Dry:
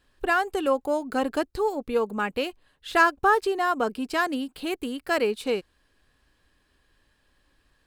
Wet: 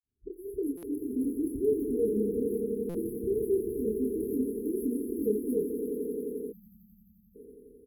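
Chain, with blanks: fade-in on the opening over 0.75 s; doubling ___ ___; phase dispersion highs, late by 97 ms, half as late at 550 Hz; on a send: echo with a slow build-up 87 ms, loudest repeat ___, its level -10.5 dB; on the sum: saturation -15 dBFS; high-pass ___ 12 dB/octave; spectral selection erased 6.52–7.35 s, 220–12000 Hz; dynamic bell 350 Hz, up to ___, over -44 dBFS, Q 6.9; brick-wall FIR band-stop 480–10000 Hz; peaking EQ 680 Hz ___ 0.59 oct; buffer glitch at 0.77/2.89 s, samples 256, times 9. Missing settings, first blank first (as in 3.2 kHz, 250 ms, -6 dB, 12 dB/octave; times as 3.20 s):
28 ms, -3.5 dB, 5, 46 Hz, -4 dB, -5 dB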